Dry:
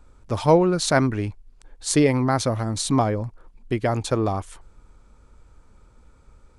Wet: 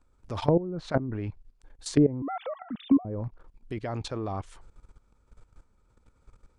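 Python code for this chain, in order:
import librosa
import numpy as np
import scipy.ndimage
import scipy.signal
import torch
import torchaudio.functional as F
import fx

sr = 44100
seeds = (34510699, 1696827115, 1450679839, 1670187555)

y = fx.sine_speech(x, sr, at=(2.22, 3.05))
y = fx.level_steps(y, sr, step_db=16)
y = fx.env_lowpass_down(y, sr, base_hz=420.0, full_db=-20.5)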